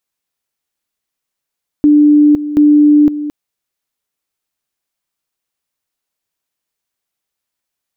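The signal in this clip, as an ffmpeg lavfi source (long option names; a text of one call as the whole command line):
ffmpeg -f lavfi -i "aevalsrc='pow(10,(-4-13*gte(mod(t,0.73),0.51))/20)*sin(2*PI*296*t)':duration=1.46:sample_rate=44100" out.wav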